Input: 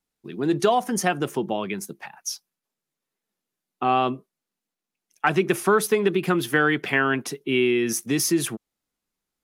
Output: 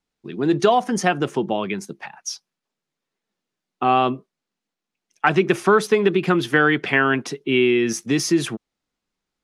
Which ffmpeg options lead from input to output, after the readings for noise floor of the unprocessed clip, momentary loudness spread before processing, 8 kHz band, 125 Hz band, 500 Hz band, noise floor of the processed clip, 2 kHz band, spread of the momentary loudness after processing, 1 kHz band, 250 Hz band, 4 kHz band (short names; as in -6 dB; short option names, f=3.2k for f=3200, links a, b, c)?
under -85 dBFS, 12 LU, -2.0 dB, +3.5 dB, +3.5 dB, -85 dBFS, +3.5 dB, 14 LU, +3.5 dB, +3.5 dB, +3.0 dB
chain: -af "lowpass=6.1k,volume=3.5dB"